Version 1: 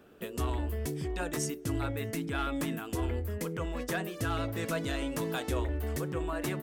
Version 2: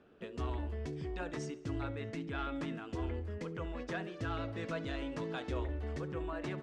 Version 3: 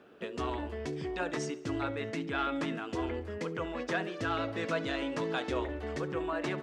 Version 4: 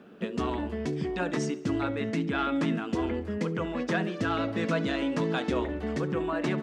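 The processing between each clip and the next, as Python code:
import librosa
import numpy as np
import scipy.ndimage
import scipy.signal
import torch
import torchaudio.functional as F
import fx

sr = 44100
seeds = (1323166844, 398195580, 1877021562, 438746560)

y1 = scipy.signal.sosfilt(scipy.signal.bessel(4, 4000.0, 'lowpass', norm='mag', fs=sr, output='sos'), x)
y1 = fx.echo_feedback(y1, sr, ms=70, feedback_pct=59, wet_db=-19)
y1 = y1 * librosa.db_to_amplitude(-5.5)
y2 = fx.highpass(y1, sr, hz=290.0, slope=6)
y2 = y2 * librosa.db_to_amplitude(8.0)
y3 = fx.peak_eq(y2, sr, hz=200.0, db=12.5, octaves=0.72)
y3 = y3 * librosa.db_to_amplitude(2.5)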